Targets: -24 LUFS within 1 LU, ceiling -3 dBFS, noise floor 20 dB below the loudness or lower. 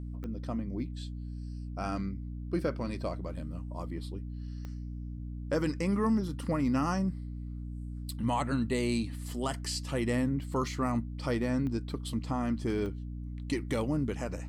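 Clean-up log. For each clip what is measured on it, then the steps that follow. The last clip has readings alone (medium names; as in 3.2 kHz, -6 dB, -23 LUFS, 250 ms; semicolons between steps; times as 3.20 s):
clicks found 4; hum 60 Hz; highest harmonic 300 Hz; hum level -37 dBFS; loudness -33.5 LUFS; peak level -18.5 dBFS; loudness target -24.0 LUFS
-> de-click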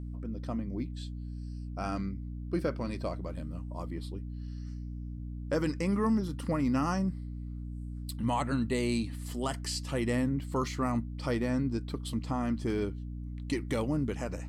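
clicks found 0; hum 60 Hz; highest harmonic 300 Hz; hum level -37 dBFS
-> de-hum 60 Hz, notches 5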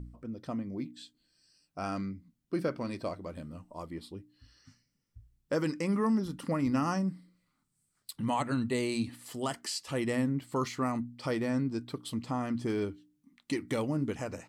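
hum not found; loudness -33.5 LUFS; peak level -19.0 dBFS; loudness target -24.0 LUFS
-> trim +9.5 dB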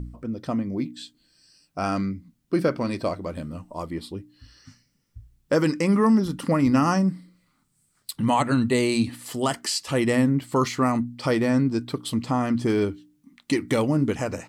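loudness -24.0 LUFS; peak level -9.5 dBFS; noise floor -69 dBFS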